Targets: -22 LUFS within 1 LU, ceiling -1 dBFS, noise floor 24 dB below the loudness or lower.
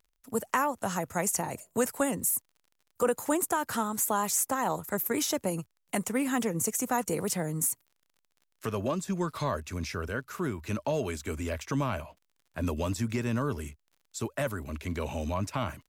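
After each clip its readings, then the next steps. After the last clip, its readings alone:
ticks 28/s; loudness -31.0 LUFS; peak -15.5 dBFS; loudness target -22.0 LUFS
-> de-click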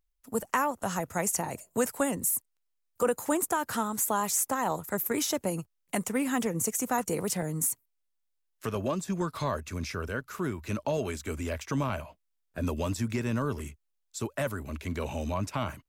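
ticks 0.13/s; loudness -31.0 LUFS; peak -15.5 dBFS; loudness target -22.0 LUFS
-> gain +9 dB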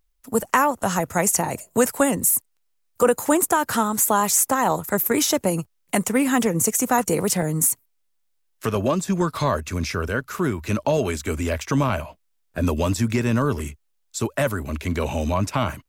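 loudness -22.0 LUFS; peak -6.5 dBFS; noise floor -69 dBFS

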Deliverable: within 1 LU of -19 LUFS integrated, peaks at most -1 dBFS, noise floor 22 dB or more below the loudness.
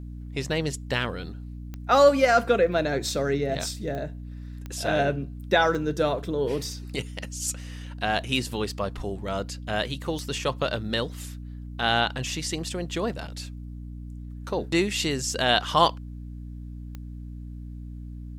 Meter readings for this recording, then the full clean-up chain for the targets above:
clicks 6; hum 60 Hz; harmonics up to 300 Hz; hum level -35 dBFS; loudness -26.0 LUFS; peak -4.0 dBFS; loudness target -19.0 LUFS
-> de-click; de-hum 60 Hz, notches 5; gain +7 dB; limiter -1 dBFS

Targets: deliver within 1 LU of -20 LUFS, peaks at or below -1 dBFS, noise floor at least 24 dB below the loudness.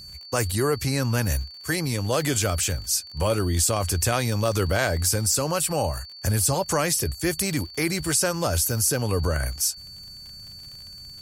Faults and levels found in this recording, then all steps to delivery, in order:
ticks 43/s; steady tone 4500 Hz; tone level -40 dBFS; loudness -24.0 LUFS; peak -8.5 dBFS; loudness target -20.0 LUFS
-> de-click; notch 4500 Hz, Q 30; gain +4 dB

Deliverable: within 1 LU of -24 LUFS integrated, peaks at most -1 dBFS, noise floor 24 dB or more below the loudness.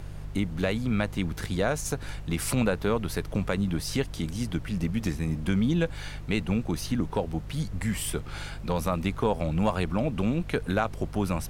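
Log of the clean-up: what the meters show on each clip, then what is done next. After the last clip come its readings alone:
hum 50 Hz; harmonics up to 150 Hz; hum level -37 dBFS; noise floor -39 dBFS; noise floor target -53 dBFS; loudness -29.0 LUFS; peak -11.0 dBFS; loudness target -24.0 LUFS
-> de-hum 50 Hz, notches 3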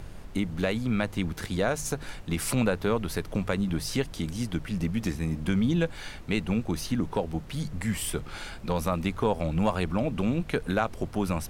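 hum none; noise floor -42 dBFS; noise floor target -54 dBFS
-> noise print and reduce 12 dB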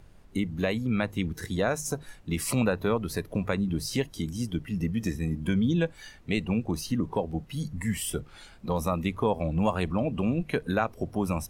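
noise floor -52 dBFS; noise floor target -54 dBFS
-> noise print and reduce 6 dB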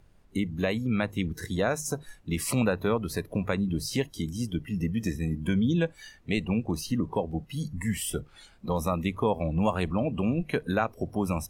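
noise floor -57 dBFS; loudness -29.5 LUFS; peak -11.0 dBFS; loudness target -24.0 LUFS
-> gain +5.5 dB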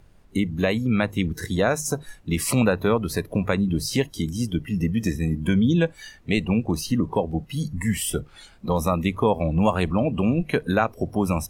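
loudness -24.0 LUFS; peak -5.5 dBFS; noise floor -51 dBFS

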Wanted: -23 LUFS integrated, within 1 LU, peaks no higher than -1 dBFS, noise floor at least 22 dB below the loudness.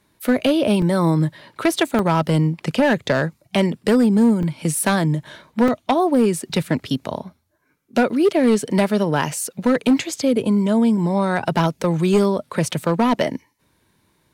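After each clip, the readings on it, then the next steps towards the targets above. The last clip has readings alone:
clipped 2.6%; flat tops at -10.0 dBFS; dropouts 5; longest dropout 2.0 ms; loudness -19.5 LUFS; peak -10.0 dBFS; loudness target -23.0 LUFS
-> clip repair -10 dBFS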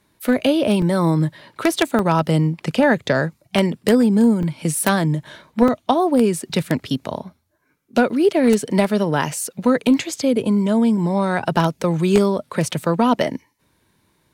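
clipped 0.0%; dropouts 5; longest dropout 2.0 ms
-> interpolate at 0.82/1.41/1.99/4.43/5.68, 2 ms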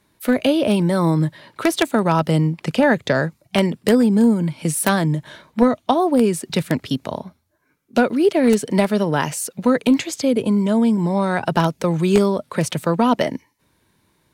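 dropouts 0; loudness -19.0 LUFS; peak -1.0 dBFS; loudness target -23.0 LUFS
-> gain -4 dB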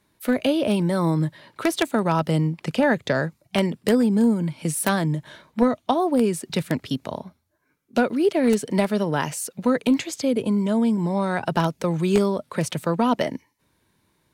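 loudness -23.0 LUFS; peak -5.0 dBFS; noise floor -68 dBFS

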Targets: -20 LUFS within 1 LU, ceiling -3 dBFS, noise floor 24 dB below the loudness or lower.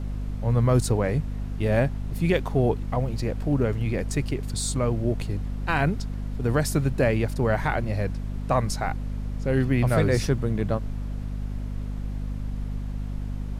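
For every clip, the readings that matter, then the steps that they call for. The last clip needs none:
hum 50 Hz; harmonics up to 250 Hz; hum level -28 dBFS; noise floor -32 dBFS; noise floor target -50 dBFS; loudness -26.0 LUFS; peak -10.0 dBFS; loudness target -20.0 LUFS
-> de-hum 50 Hz, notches 5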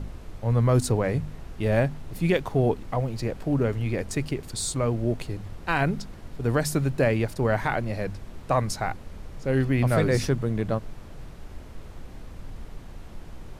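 hum none; noise floor -43 dBFS; noise floor target -50 dBFS
-> noise print and reduce 7 dB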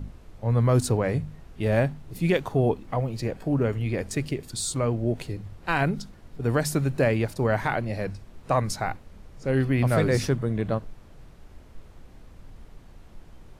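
noise floor -50 dBFS; loudness -26.0 LUFS; peak -11.0 dBFS; loudness target -20.0 LUFS
-> gain +6 dB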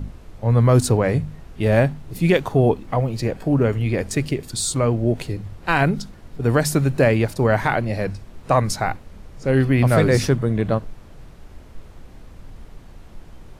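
loudness -20.0 LUFS; peak -5.0 dBFS; noise floor -44 dBFS

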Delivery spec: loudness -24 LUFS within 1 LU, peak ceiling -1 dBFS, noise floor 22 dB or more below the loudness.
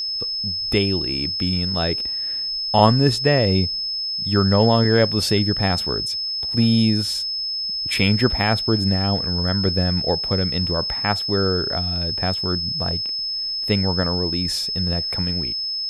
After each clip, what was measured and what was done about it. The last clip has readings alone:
ticks 23/s; steady tone 5200 Hz; tone level -23 dBFS; loudness -20.0 LUFS; peak -1.0 dBFS; loudness target -24.0 LUFS
-> de-click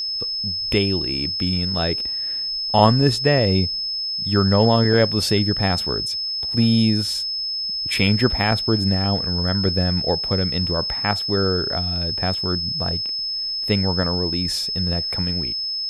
ticks 0.063/s; steady tone 5200 Hz; tone level -23 dBFS
-> notch 5200 Hz, Q 30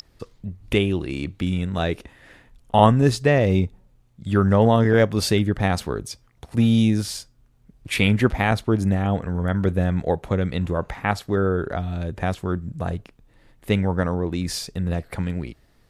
steady tone none; loudness -22.0 LUFS; peak -2.0 dBFS; loudness target -24.0 LUFS
-> gain -2 dB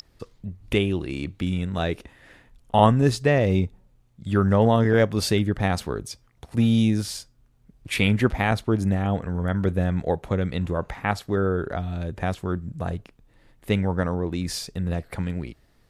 loudness -24.0 LUFS; peak -4.0 dBFS; noise floor -61 dBFS

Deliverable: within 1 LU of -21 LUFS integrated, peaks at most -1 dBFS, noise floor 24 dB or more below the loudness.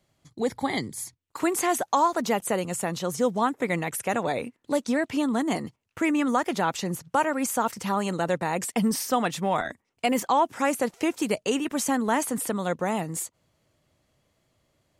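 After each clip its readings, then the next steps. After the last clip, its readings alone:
loudness -26.5 LUFS; peak -11.5 dBFS; loudness target -21.0 LUFS
-> gain +5.5 dB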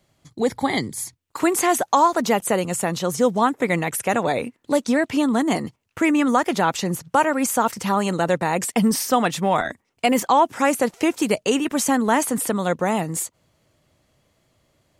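loudness -21.0 LUFS; peak -6.0 dBFS; noise floor -70 dBFS

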